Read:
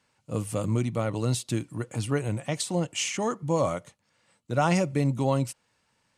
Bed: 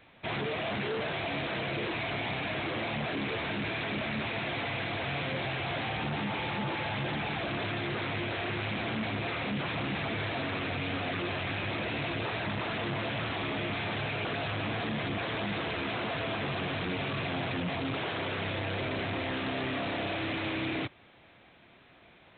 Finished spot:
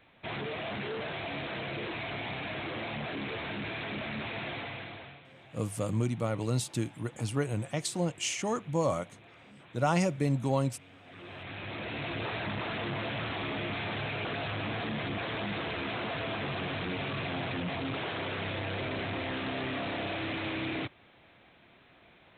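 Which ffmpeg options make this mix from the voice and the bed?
ffmpeg -i stem1.wav -i stem2.wav -filter_complex "[0:a]adelay=5250,volume=-3.5dB[link_01];[1:a]volume=16.5dB,afade=type=out:start_time=4.48:duration=0.73:silence=0.125893,afade=type=in:start_time=11.04:duration=1.21:silence=0.1[link_02];[link_01][link_02]amix=inputs=2:normalize=0" out.wav

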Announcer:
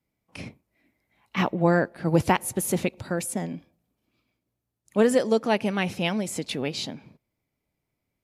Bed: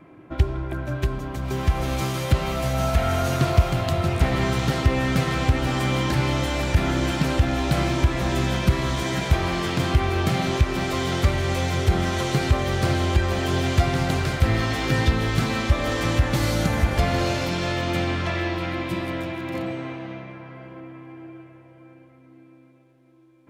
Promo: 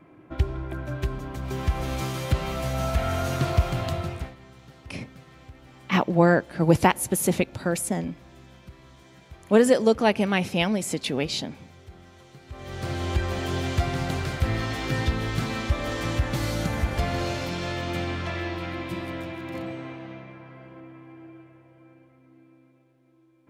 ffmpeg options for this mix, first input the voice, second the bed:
ffmpeg -i stem1.wav -i stem2.wav -filter_complex "[0:a]adelay=4550,volume=2.5dB[link_01];[1:a]volume=17.5dB,afade=type=out:start_time=3.86:duration=0.49:silence=0.0749894,afade=type=in:start_time=12.47:duration=0.68:silence=0.0841395[link_02];[link_01][link_02]amix=inputs=2:normalize=0" out.wav

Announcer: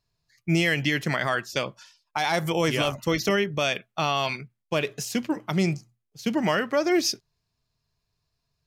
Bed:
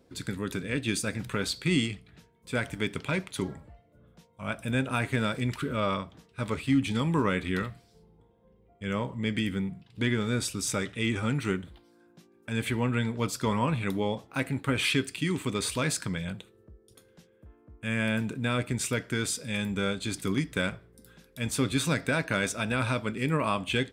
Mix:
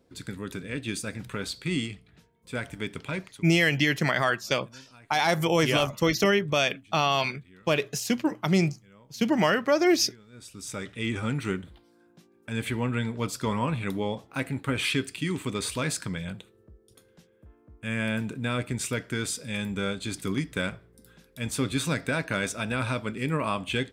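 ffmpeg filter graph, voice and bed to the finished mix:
ffmpeg -i stem1.wav -i stem2.wav -filter_complex "[0:a]adelay=2950,volume=1dB[link_01];[1:a]volume=21dB,afade=type=out:start_time=3.23:duration=0.2:silence=0.0841395,afade=type=in:start_time=10.32:duration=0.84:silence=0.0630957[link_02];[link_01][link_02]amix=inputs=2:normalize=0" out.wav

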